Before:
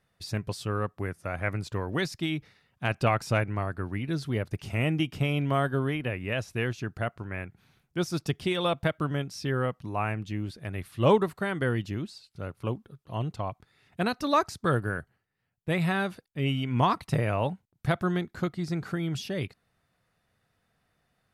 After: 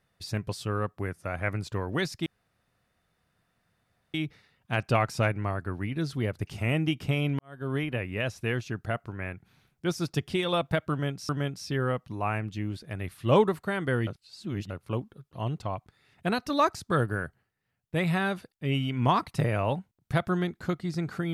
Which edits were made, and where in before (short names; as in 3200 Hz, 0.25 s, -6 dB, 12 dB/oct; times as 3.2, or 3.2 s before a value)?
2.26 insert room tone 1.88 s
5.51–5.88 fade in quadratic
9.03–9.41 loop, 2 plays
11.81–12.44 reverse